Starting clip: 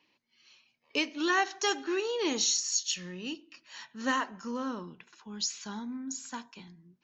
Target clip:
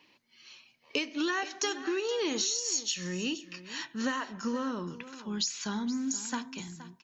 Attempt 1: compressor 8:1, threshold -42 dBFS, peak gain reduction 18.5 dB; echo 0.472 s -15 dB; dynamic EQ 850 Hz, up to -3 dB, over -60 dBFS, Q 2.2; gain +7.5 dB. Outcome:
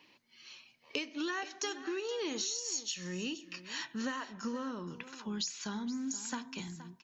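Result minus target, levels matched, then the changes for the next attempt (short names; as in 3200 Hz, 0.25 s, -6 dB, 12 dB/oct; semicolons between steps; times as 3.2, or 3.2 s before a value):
compressor: peak gain reduction +5.5 dB
change: compressor 8:1, threshold -35.5 dBFS, peak gain reduction 13 dB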